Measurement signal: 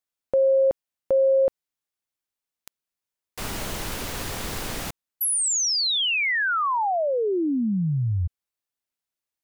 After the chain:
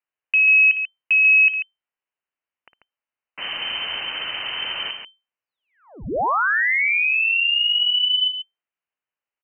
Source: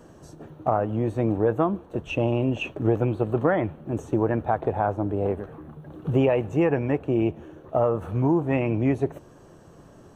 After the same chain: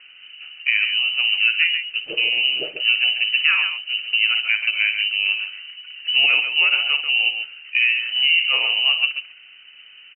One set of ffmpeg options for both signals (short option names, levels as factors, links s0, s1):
-af "aecho=1:1:55.39|139.9:0.282|0.398,lowpass=f=2600:t=q:w=0.5098,lowpass=f=2600:t=q:w=0.6013,lowpass=f=2600:t=q:w=0.9,lowpass=f=2600:t=q:w=2.563,afreqshift=-3100,volume=1.41"